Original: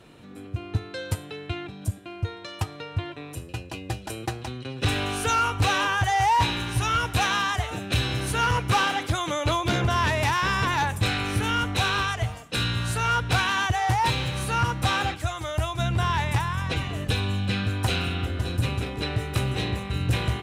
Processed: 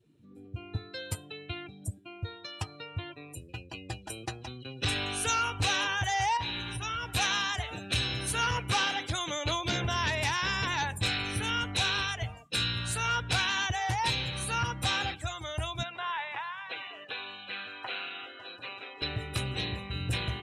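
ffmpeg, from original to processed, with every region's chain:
ffmpeg -i in.wav -filter_complex "[0:a]asettb=1/sr,asplit=3[link_01][link_02][link_03];[link_01]atrim=end=6.374[link_04];[link_02]atrim=start=6.37:end=7.14,asetpts=PTS-STARTPTS,afade=type=in:duration=0.004:curve=qsin,afade=type=out:start_time=0.766:duration=0.004:curve=qsin,highshelf=frequency=5300:gain=-3.5,acompressor=threshold=-26dB:ratio=3:attack=3.2:release=140:knee=1:detection=peak[link_05];[link_03]atrim=start=7.136[link_06];[link_04][link_05]acrossfade=duration=0.004:curve1=hsin:curve2=qsin[link_07];[link_07][link_06]acrossfade=duration=0.004:curve1=qsin:curve2=hsin,asettb=1/sr,asplit=3[link_08][link_09][link_10];[link_08]atrim=end=15.834[link_11];[link_09]atrim=start=15.83:end=19.02,asetpts=PTS-STARTPTS,afade=type=in:duration=0.004:curve=qsin,afade=type=out:start_time=3.186:duration=0.004:curve=qsin,acrossover=split=2700[link_12][link_13];[link_13]acompressor=threshold=-41dB:ratio=4:attack=1:release=60[link_14];[link_12][link_14]amix=inputs=2:normalize=0,highpass=580,lowpass=5000[link_15];[link_10]atrim=start=19.016[link_16];[link_11][link_15]acrossfade=duration=0.004:curve1=hsin:curve2=qsin[link_17];[link_17][link_16]acrossfade=duration=0.004:curve1=qsin:curve2=hsin,adynamicequalizer=threshold=0.00891:dfrequency=1200:dqfactor=4.4:tfrequency=1200:tqfactor=4.4:attack=5:release=100:ratio=0.375:range=2.5:mode=cutabove:tftype=bell,afftdn=noise_reduction=22:noise_floor=-41,highshelf=frequency=2300:gain=11,volume=-8.5dB" out.wav

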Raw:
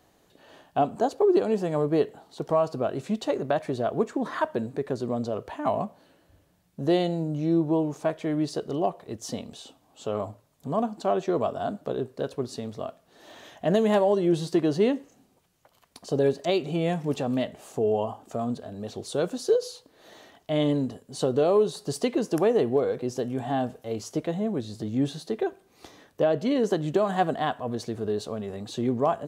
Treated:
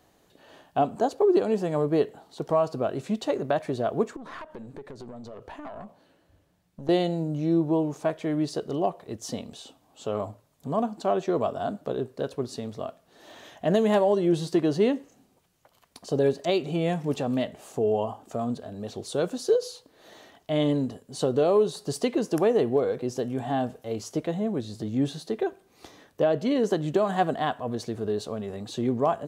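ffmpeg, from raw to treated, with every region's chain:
ffmpeg -i in.wav -filter_complex "[0:a]asettb=1/sr,asplit=3[link_01][link_02][link_03];[link_01]atrim=end=4.164[link_04];[link_02]atrim=start=4.16:end=6.89,asetpts=PTS-STARTPTS,afade=type=in:duration=0.004:curve=qsin,afade=type=out:start_time=2.726:duration=0.004:curve=qsin,highshelf=frequency=8400:gain=-5.5,acompressor=threshold=-33dB:ratio=6:attack=3.2:release=140:knee=1:detection=peak,aeval=exprs='(tanh(35.5*val(0)+0.55)-tanh(0.55))/35.5':channel_layout=same[link_05];[link_03]atrim=start=6.886[link_06];[link_04][link_05]acrossfade=duration=0.004:curve1=hsin:curve2=qsin[link_07];[link_07][link_06]acrossfade=duration=0.004:curve1=qsin:curve2=hsin" out.wav

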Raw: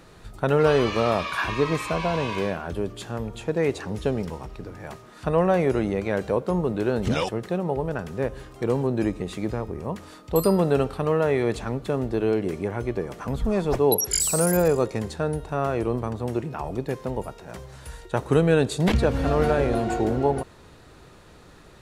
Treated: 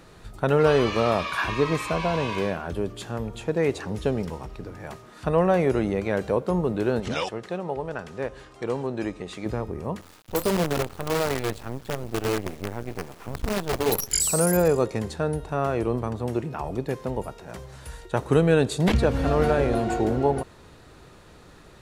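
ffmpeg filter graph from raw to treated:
ffmpeg -i in.wav -filter_complex "[0:a]asettb=1/sr,asplit=3[link_01][link_02][link_03];[link_01]atrim=end=7.004[link_04];[link_02]atrim=start=7:end=9.46,asetpts=PTS-STARTPTS,afade=type=in:duration=0.004:curve=qsin,afade=type=out:start_time=2.456:duration=0.004:curve=qsin,lowpass=8200,lowshelf=frequency=370:gain=-9[link_05];[link_03]atrim=start=9.456[link_06];[link_04][link_05]acrossfade=duration=0.004:curve1=hsin:curve2=qsin[link_07];[link_07][link_06]acrossfade=duration=0.004:curve1=qsin:curve2=hsin,asettb=1/sr,asplit=3[link_08][link_09][link_10];[link_08]atrim=end=10.014[link_11];[link_09]atrim=start=10.01:end=14.13,asetpts=PTS-STARTPTS,afade=type=in:duration=0.004:curve=qsin,afade=type=out:start_time=4.116:duration=0.004:curve=qsin,equalizer=frequency=93:width=2.8:gain=6.5,flanger=delay=6:depth=4.5:regen=-62:speed=1.7:shape=triangular,acrusher=bits=5:dc=4:mix=0:aa=0.000001[link_12];[link_10]atrim=start=14.126[link_13];[link_11][link_12]acrossfade=duration=0.004:curve1=hsin:curve2=qsin[link_14];[link_14][link_13]acrossfade=duration=0.004:curve1=qsin:curve2=hsin" out.wav

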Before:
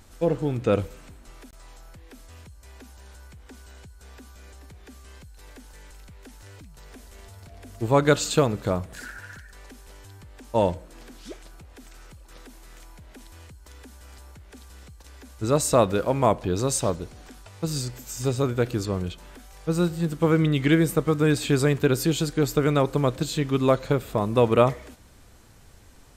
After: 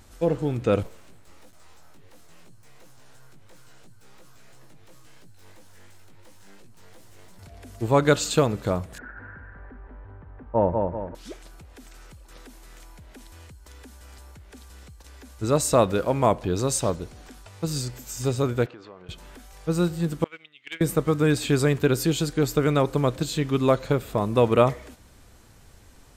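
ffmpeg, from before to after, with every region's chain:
ffmpeg -i in.wav -filter_complex "[0:a]asettb=1/sr,asplit=3[link_01][link_02][link_03];[link_01]atrim=end=0.834[link_04];[link_02]atrim=start=0.83:end=7.39,asetpts=PTS-STARTPTS,afade=type=in:duration=0.004:curve=qsin,afade=type=out:start_time=6.556:duration=0.004:curve=qsin,aeval=exprs='abs(val(0))':channel_layout=same,flanger=delay=17:depth=3.5:speed=2.9[link_05];[link_03]atrim=start=7.386[link_06];[link_04][link_05]acrossfade=duration=0.004:curve1=hsin:curve2=qsin[link_07];[link_07][link_06]acrossfade=duration=0.004:curve1=qsin:curve2=hsin,asettb=1/sr,asplit=3[link_08][link_09][link_10];[link_08]atrim=end=8.984[link_11];[link_09]atrim=start=8.98:end=11.15,asetpts=PTS-STARTPTS,afade=type=in:duration=0.004:curve=qsin,afade=type=out:start_time=2.166:duration=0.004:curve=qsin,lowpass=frequency=1600:width=0.5412,lowpass=frequency=1600:width=1.3066,aecho=1:1:192|384|576|768|960:0.631|0.265|0.111|0.0467|0.0196,atrim=end_sample=95697[link_12];[link_10]atrim=start=11.146[link_13];[link_11][link_12]acrossfade=duration=0.004:curve1=hsin:curve2=qsin[link_14];[link_14][link_13]acrossfade=duration=0.004:curve1=qsin:curve2=hsin,asettb=1/sr,asplit=3[link_15][link_16][link_17];[link_15]atrim=end=18.664[link_18];[link_16]atrim=start=18.66:end=19.09,asetpts=PTS-STARTPTS,afade=type=in:duration=0.004:curve=qsin,afade=type=out:start_time=0.426:duration=0.004:curve=qsin,highpass=740,lowpass=3600,aemphasis=mode=reproduction:type=riaa,acompressor=threshold=-42dB:ratio=3:attack=3.2:release=140:knee=1:detection=peak[link_19];[link_17]atrim=start=19.086[link_20];[link_18][link_19]acrossfade=duration=0.004:curve1=hsin:curve2=qsin[link_21];[link_21][link_20]acrossfade=duration=0.004:curve1=qsin:curve2=hsin,asettb=1/sr,asplit=3[link_22][link_23][link_24];[link_22]atrim=end=20.244[link_25];[link_23]atrim=start=20.24:end=20.81,asetpts=PTS-STARTPTS,afade=type=in:duration=0.004:curve=qsin,afade=type=out:start_time=0.566:duration=0.004:curve=qsin,agate=range=-16dB:threshold=-19dB:ratio=16:release=100:detection=peak,bandpass=frequency=2800:width_type=q:width=2.6,asoftclip=type=hard:threshold=-25dB[link_26];[link_24]atrim=start=20.806[link_27];[link_25][link_26]acrossfade=duration=0.004:curve1=hsin:curve2=qsin[link_28];[link_28][link_27]acrossfade=duration=0.004:curve1=qsin:curve2=hsin" out.wav

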